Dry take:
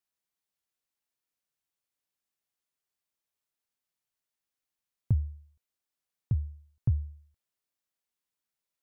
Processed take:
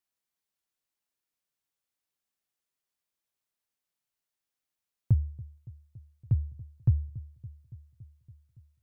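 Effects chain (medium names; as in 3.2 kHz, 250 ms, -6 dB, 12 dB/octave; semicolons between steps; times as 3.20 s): dynamic bell 120 Hz, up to +4 dB, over -35 dBFS, Q 2; on a send: feedback echo behind a low-pass 282 ms, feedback 71%, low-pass 750 Hz, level -20 dB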